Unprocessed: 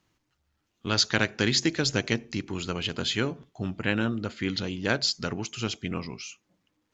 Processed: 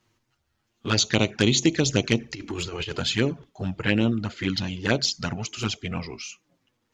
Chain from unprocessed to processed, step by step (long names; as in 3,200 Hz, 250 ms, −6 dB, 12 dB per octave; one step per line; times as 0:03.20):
0:02.20–0:02.99: compressor whose output falls as the input rises −33 dBFS, ratio −0.5
flanger swept by the level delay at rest 8.6 ms, full sweep at −21.5 dBFS
level +6 dB